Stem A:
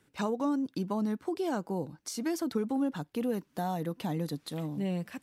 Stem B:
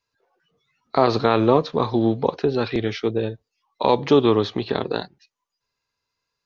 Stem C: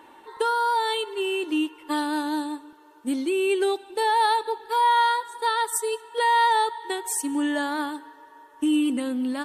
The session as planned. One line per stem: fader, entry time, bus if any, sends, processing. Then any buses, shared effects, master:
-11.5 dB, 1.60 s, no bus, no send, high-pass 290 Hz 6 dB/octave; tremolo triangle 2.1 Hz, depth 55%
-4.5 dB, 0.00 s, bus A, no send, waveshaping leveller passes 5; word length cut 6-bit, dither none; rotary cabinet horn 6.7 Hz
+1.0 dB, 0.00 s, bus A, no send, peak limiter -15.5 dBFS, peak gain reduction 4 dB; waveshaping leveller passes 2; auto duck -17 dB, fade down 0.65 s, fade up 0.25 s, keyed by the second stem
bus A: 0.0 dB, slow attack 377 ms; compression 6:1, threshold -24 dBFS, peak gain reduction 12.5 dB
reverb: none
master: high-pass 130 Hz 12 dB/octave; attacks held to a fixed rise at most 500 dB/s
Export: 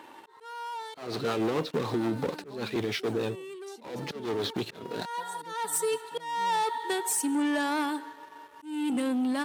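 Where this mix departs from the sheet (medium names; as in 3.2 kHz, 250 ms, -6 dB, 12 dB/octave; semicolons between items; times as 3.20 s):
stem B -4.5 dB -> -16.5 dB; stem C +1.0 dB -> -5.0 dB; master: missing attacks held to a fixed rise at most 500 dB/s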